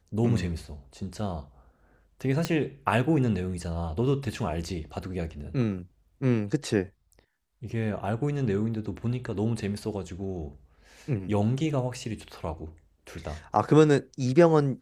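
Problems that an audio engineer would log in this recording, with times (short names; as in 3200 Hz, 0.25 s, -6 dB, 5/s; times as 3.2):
2.45 pop -12 dBFS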